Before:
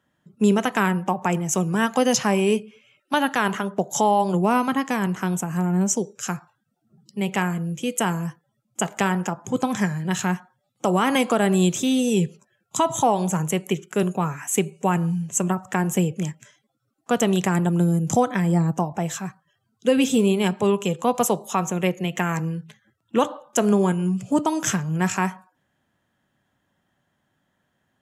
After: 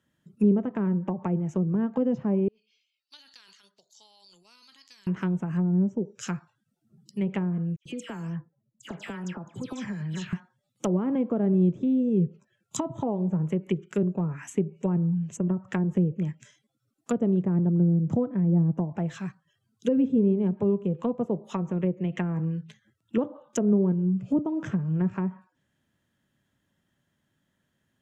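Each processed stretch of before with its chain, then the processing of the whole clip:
2.48–5.07 de-esser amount 70% + band-pass 4500 Hz, Q 11 + transient shaper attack +5 dB, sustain +10 dB
7.76–10.33 low-pass opened by the level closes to 400 Hz, open at -19.5 dBFS + compressor, threshold -27 dBFS + dispersion lows, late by 95 ms, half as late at 2200 Hz
whole clip: treble ducked by the level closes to 580 Hz, closed at -18.5 dBFS; bell 910 Hz -7.5 dB 2 oct; notch 750 Hz, Q 12; gain -1 dB

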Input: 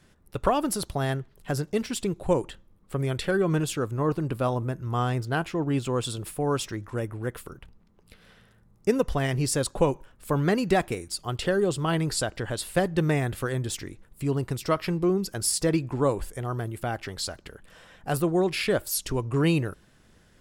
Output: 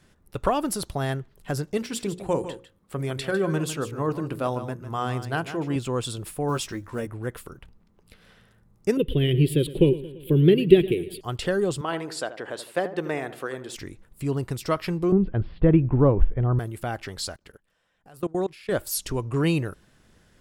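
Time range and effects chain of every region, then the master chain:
1.77–5.76 HPF 100 Hz 6 dB/oct + notches 60/120/180/240/300/360/420/480/540 Hz + echo 0.152 s -11.5 dB
6.48–7.07 block floating point 7-bit + doubler 13 ms -5.5 dB
8.97–11.21 EQ curve 110 Hz 0 dB, 150 Hz +9 dB, 240 Hz 0 dB, 370 Hz +13 dB, 740 Hz -19 dB, 1200 Hz -19 dB, 2000 Hz -5 dB, 3200 Hz +11 dB, 5800 Hz -27 dB, 12000 Hz +1 dB + feedback echo 0.113 s, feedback 58%, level -17 dB
11.81–13.76 HPF 340 Hz + high shelf 4200 Hz -9.5 dB + darkening echo 79 ms, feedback 43%, low-pass 1400 Hz, level -11 dB
15.12–16.59 steep low-pass 3300 Hz 48 dB/oct + tilt -3.5 dB/oct
17.36–18.72 low shelf 220 Hz -3 dB + level quantiser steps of 24 dB
whole clip: dry

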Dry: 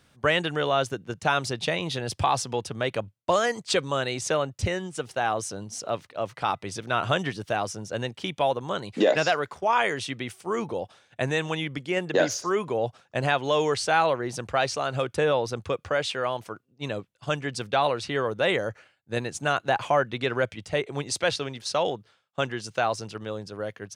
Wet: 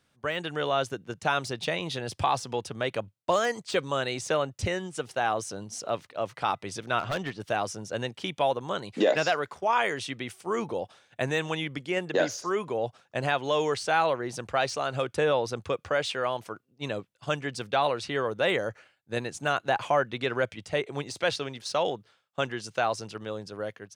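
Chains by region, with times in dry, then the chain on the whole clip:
6.99–7.4 G.711 law mismatch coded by A + air absorption 97 m + hard clip -23 dBFS
whole clip: de-esser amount 65%; low shelf 120 Hz -5 dB; AGC gain up to 8 dB; gain -8.5 dB

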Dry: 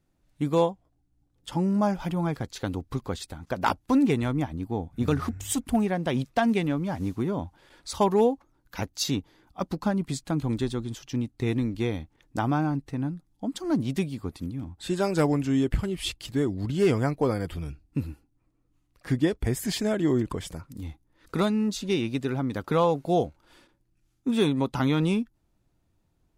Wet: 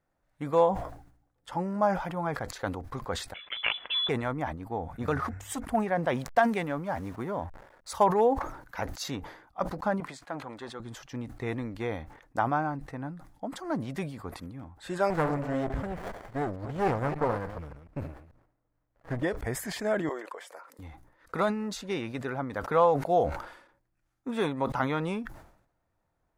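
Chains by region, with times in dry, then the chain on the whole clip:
3.34–4.09 steep high-pass 220 Hz 96 dB/oct + inverted band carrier 3700 Hz
6.15–8.03 high shelf 7700 Hz +11.5 dB + backlash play -46 dBFS
10–10.8 HPF 590 Hz 6 dB/oct + high shelf 6300 Hz -10 dB + core saturation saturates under 420 Hz
15.1–19.23 reverse delay 0.146 s, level -10.5 dB + running maximum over 33 samples
20.09–20.79 HPF 440 Hz 24 dB/oct + compressor 2:1, threshold -40 dBFS
whole clip: band shelf 1000 Hz +11 dB 2.4 oct; sustainer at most 84 dB/s; gain -9 dB

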